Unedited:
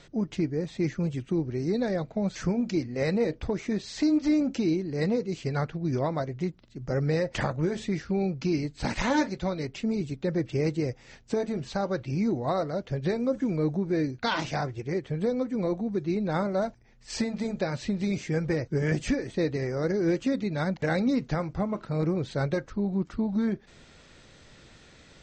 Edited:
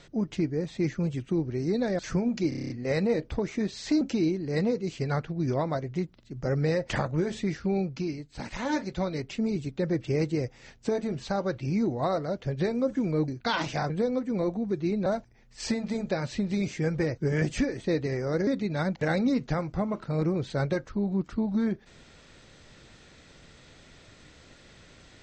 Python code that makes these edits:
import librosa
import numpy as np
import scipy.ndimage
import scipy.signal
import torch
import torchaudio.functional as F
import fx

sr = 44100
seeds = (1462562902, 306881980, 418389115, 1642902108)

y = fx.edit(x, sr, fx.cut(start_s=1.99, length_s=0.32),
    fx.stutter(start_s=2.81, slice_s=0.03, count=8),
    fx.cut(start_s=4.12, length_s=0.34),
    fx.fade_down_up(start_s=8.23, length_s=1.18, db=-8.0, fade_s=0.39),
    fx.cut(start_s=13.73, length_s=0.33),
    fx.cut(start_s=14.68, length_s=0.46),
    fx.cut(start_s=16.3, length_s=0.26),
    fx.cut(start_s=19.97, length_s=0.31), tone=tone)